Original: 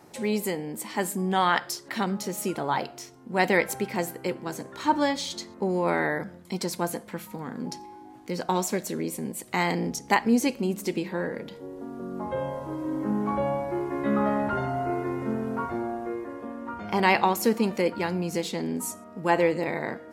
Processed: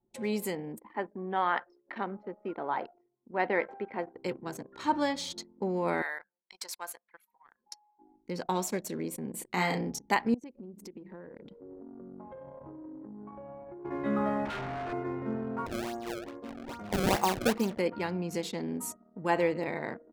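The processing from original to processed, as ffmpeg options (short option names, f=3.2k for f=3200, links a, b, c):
-filter_complex "[0:a]asplit=3[a][b][c];[a]afade=t=out:st=0.78:d=0.02[d];[b]highpass=290,lowpass=2k,afade=t=in:st=0.78:d=0.02,afade=t=out:st=4.15:d=0.02[e];[c]afade=t=in:st=4.15:d=0.02[f];[d][e][f]amix=inputs=3:normalize=0,asettb=1/sr,asplit=3[g][h][i];[g]atrim=end=6.024[j];[h]atrim=start=6.02:end=7.99,asetpts=PTS-STARTPTS,afade=t=in:d=0.004:c=qsin,afade=t=out:st=1.966:d=0.004:c=qsin,highpass=1.1k[k];[i]atrim=start=7.986[l];[j][k]acrossfade=d=0.004:c1=hsin:c2=qsin[m];[m][l]acrossfade=d=0.004:c1=qsin:c2=hsin,asettb=1/sr,asplit=3[n][o][p];[n]atrim=end=9.304[q];[o]atrim=start=9.3:end=9.81,asetpts=PTS-STARTPTS,afade=t=in:d=0.004:c=qsin,afade=t=out:st=0.506:d=0.004:c=qsin,asplit=2[r][s];[s]adelay=33,volume=-3.5dB[t];[r][t]amix=inputs=2:normalize=0,atrim=end_sample=22491[u];[p]atrim=start=9.806[v];[q][u]acrossfade=d=0.004:c1=hsin:c2=qsin[w];[w][v]acrossfade=d=0.004:c1=qsin:c2=hsin,asettb=1/sr,asplit=3[x][y][z];[x]atrim=end=10.344[aa];[y]atrim=start=10.34:end=13.85,asetpts=PTS-STARTPTS,afade=t=in:d=0.004:c=qsin,afade=t=out:st=3.506:d=0.004:c=qsin,acompressor=threshold=-36dB:ratio=8:attack=3.2:release=140:knee=1:detection=peak[ab];[z]atrim=start=13.846[ac];[aa][ab]acrossfade=d=0.004:c1=hsin:c2=qsin[ad];[ad][ac]acrossfade=d=0.004:c1=qsin:c2=hsin,asettb=1/sr,asplit=3[ae][af][ag];[ae]atrim=end=14.454[ah];[af]atrim=start=14.45:end=14.93,asetpts=PTS-STARTPTS,afade=t=in:d=0.004:c=qsin,afade=t=out:st=0.476:d=0.004:c=qsin,aeval=exprs='0.0473*(abs(mod(val(0)/0.0473+3,4)-2)-1)':c=same[ai];[ag]atrim=start=14.926[aj];[ah][ai]acrossfade=d=0.004:c1=hsin:c2=qsin[ak];[ak][aj]acrossfade=d=0.004:c1=qsin:c2=hsin,asettb=1/sr,asplit=3[al][am][an];[al]atrim=end=15.664[ao];[am]atrim=start=15.66:end=17.79,asetpts=PTS-STARTPTS,afade=t=in:d=0.004:c=qsin,afade=t=out:st=2.126:d=0.004:c=qsin,acrusher=samples=27:mix=1:aa=0.000001:lfo=1:lforange=43.2:lforate=2.4[ap];[an]atrim=start=17.786[aq];[ao][ap]acrossfade=d=0.004:c1=hsin:c2=qsin[ar];[ar][aq]acrossfade=d=0.004:c1=qsin:c2=hsin,anlmdn=1,volume=-5dB"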